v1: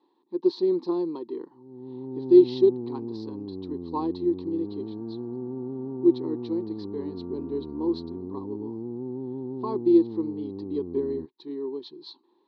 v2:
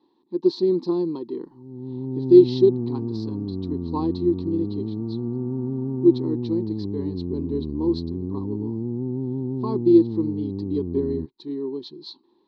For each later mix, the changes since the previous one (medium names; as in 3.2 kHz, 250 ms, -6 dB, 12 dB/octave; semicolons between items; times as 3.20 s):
second sound: entry -1.95 s; master: add tone controls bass +14 dB, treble +9 dB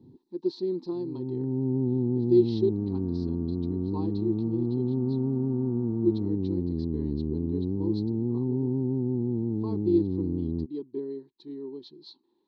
speech -9.0 dB; first sound: entry -0.60 s; master: add peaking EQ 1.1 kHz -5.5 dB 0.26 oct